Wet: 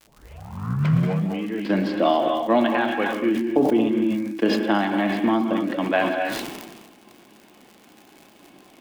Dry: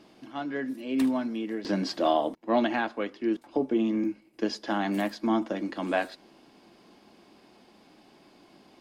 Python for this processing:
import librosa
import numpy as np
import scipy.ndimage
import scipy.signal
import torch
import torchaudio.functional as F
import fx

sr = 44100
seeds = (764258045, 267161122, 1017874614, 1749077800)

y = fx.tape_start_head(x, sr, length_s=1.52)
y = scipy.signal.sosfilt(scipy.signal.butter(2, 95.0, 'highpass', fs=sr, output='sos'), y)
y = fx.high_shelf_res(y, sr, hz=4200.0, db=-10.5, q=1.5)
y = fx.transient(y, sr, attack_db=5, sustain_db=-6)
y = fx.dmg_crackle(y, sr, seeds[0], per_s=110.0, level_db=-39.0)
y = fx.rev_gated(y, sr, seeds[1], gate_ms=290, shape='rising', drr_db=4.5)
y = fx.sustainer(y, sr, db_per_s=39.0)
y = y * librosa.db_to_amplitude(2.5)